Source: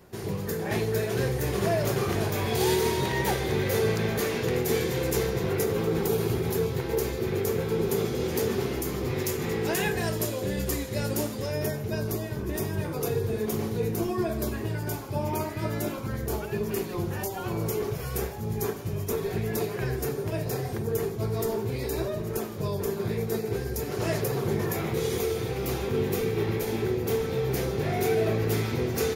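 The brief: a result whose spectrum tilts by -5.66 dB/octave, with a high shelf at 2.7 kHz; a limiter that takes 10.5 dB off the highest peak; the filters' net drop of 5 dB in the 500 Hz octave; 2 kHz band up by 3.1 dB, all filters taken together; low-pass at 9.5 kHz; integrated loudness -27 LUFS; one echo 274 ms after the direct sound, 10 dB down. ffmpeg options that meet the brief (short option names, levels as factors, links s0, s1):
-af "lowpass=9500,equalizer=f=500:t=o:g=-6.5,equalizer=f=2000:t=o:g=6.5,highshelf=f=2700:g=-6,alimiter=level_in=1.19:limit=0.0631:level=0:latency=1,volume=0.841,aecho=1:1:274:0.316,volume=2.24"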